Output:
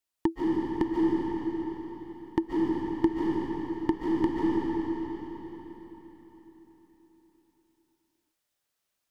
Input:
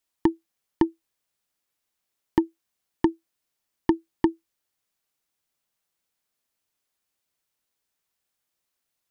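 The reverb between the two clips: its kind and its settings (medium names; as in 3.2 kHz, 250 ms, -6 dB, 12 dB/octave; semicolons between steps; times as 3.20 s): algorithmic reverb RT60 4.3 s, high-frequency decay 0.9×, pre-delay 105 ms, DRR -5.5 dB; trim -5.5 dB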